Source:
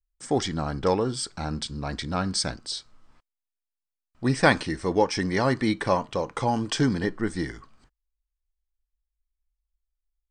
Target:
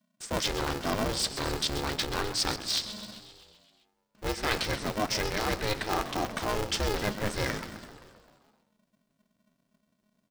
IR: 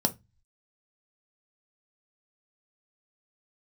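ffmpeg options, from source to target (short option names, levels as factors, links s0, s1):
-filter_complex "[0:a]equalizer=f=4100:t=o:w=1.8:g=8,areverse,acompressor=threshold=0.0251:ratio=6,areverse,asplit=9[s0][s1][s2][s3][s4][s5][s6][s7][s8];[s1]adelay=130,afreqshift=-98,volume=0.251[s9];[s2]adelay=260,afreqshift=-196,volume=0.16[s10];[s3]adelay=390,afreqshift=-294,volume=0.102[s11];[s4]adelay=520,afreqshift=-392,volume=0.0661[s12];[s5]adelay=650,afreqshift=-490,volume=0.0422[s13];[s6]adelay=780,afreqshift=-588,volume=0.0269[s14];[s7]adelay=910,afreqshift=-686,volume=0.0172[s15];[s8]adelay=1040,afreqshift=-784,volume=0.0111[s16];[s0][s9][s10][s11][s12][s13][s14][s15][s16]amix=inputs=9:normalize=0,aeval=exprs='val(0)*sgn(sin(2*PI*210*n/s))':c=same,volume=1.68"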